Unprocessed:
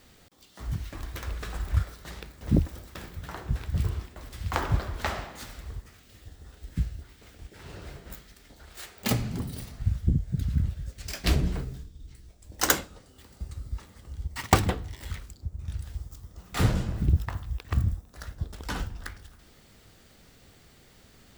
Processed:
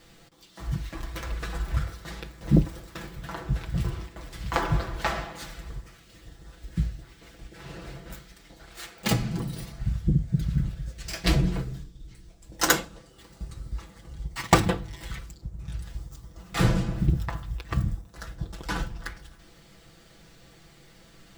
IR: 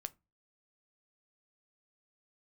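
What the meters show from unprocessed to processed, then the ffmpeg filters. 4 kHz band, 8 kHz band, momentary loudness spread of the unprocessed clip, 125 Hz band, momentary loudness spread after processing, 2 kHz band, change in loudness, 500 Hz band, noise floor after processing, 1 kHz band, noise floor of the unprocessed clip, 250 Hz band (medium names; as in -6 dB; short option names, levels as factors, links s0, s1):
+2.5 dB, +1.0 dB, 19 LU, +1.0 dB, 20 LU, +3.0 dB, +1.5 dB, +3.0 dB, -54 dBFS, +2.5 dB, -56 dBFS, +4.0 dB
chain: -filter_complex "[0:a]highshelf=f=10000:g=-7,asplit=2[s0][s1];[1:a]atrim=start_sample=2205,adelay=6[s2];[s1][s2]afir=irnorm=-1:irlink=0,volume=1.19[s3];[s0][s3]amix=inputs=2:normalize=0,volume=1.12"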